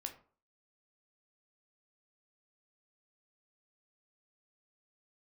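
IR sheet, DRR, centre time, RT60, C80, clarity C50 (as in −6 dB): 4.5 dB, 11 ms, 0.45 s, 16.5 dB, 12.0 dB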